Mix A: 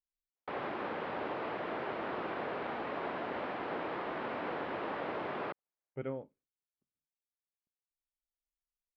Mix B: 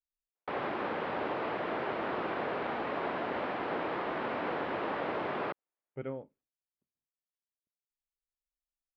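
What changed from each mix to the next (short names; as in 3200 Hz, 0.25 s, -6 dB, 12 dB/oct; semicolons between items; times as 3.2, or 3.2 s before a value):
background +3.5 dB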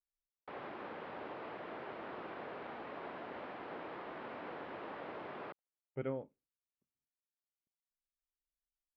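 background -11.5 dB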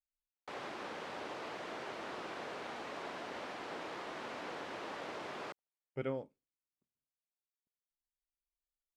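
master: remove air absorption 430 m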